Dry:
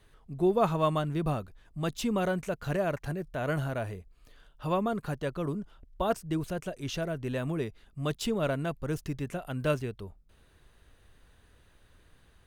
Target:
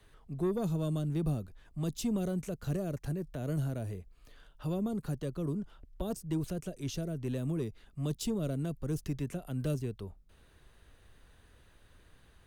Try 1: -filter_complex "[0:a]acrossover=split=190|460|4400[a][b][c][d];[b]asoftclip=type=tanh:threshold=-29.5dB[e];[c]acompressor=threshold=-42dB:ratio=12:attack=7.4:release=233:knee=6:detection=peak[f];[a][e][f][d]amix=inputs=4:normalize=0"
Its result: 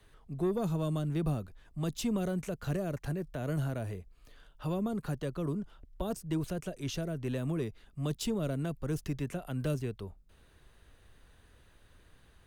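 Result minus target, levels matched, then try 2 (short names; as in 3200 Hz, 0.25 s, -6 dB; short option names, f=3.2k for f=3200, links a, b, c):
compressor: peak gain reduction -7.5 dB
-filter_complex "[0:a]acrossover=split=190|460|4400[a][b][c][d];[b]asoftclip=type=tanh:threshold=-29.5dB[e];[c]acompressor=threshold=-50dB:ratio=12:attack=7.4:release=233:knee=6:detection=peak[f];[a][e][f][d]amix=inputs=4:normalize=0"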